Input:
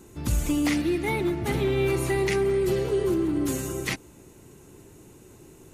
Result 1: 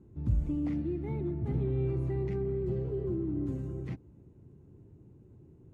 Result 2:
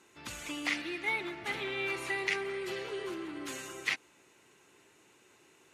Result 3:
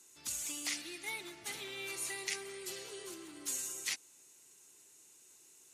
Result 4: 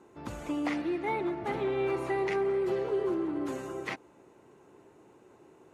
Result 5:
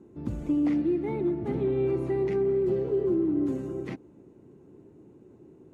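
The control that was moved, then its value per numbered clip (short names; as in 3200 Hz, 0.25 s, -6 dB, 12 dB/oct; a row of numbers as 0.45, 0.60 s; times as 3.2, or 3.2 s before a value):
band-pass, frequency: 100, 2300, 7000, 830, 280 Hz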